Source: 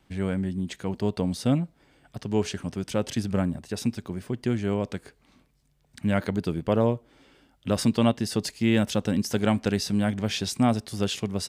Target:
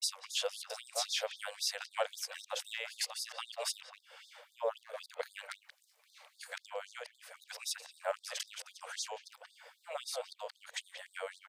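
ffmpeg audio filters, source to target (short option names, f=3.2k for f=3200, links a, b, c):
-filter_complex "[0:a]areverse,lowshelf=f=280:t=q:w=3:g=-11,asplit=2[a][b];[b]adelay=180,highpass=300,lowpass=3.4k,asoftclip=type=hard:threshold=-16dB,volume=-10dB[c];[a][c]amix=inputs=2:normalize=0,acompressor=threshold=-41dB:ratio=2.5,afftfilt=real='re*gte(b*sr/1024,440*pow(3600/440,0.5+0.5*sin(2*PI*3.8*pts/sr)))':imag='im*gte(b*sr/1024,440*pow(3600/440,0.5+0.5*sin(2*PI*3.8*pts/sr)))':win_size=1024:overlap=0.75,volume=6.5dB"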